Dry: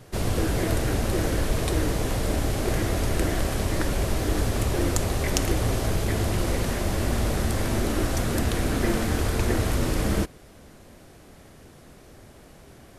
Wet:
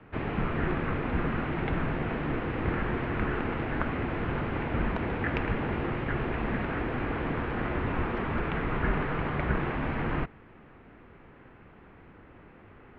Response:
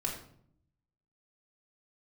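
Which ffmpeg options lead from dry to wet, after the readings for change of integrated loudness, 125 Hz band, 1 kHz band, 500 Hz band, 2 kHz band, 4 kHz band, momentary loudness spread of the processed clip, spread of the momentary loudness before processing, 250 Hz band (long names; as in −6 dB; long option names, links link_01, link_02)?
−5.0 dB, −6.5 dB, −0.5 dB, −5.0 dB, −0.5 dB, −13.0 dB, 2 LU, 2 LU, −3.5 dB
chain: -af "highpass=frequency=330:width_type=q:width=0.5412,highpass=frequency=330:width_type=q:width=1.307,lowpass=frequency=2800:width_type=q:width=0.5176,lowpass=frequency=2800:width_type=q:width=0.7071,lowpass=frequency=2800:width_type=q:width=1.932,afreqshift=-300,volume=1.5dB"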